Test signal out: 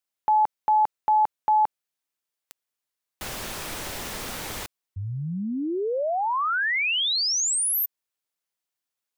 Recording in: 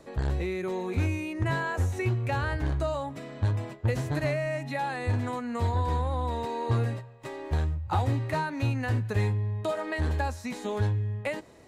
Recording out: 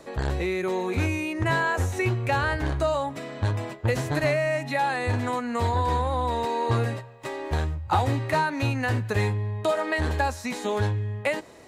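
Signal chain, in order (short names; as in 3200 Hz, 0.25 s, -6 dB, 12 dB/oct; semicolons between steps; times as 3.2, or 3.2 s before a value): low shelf 260 Hz -7.5 dB; gain +7 dB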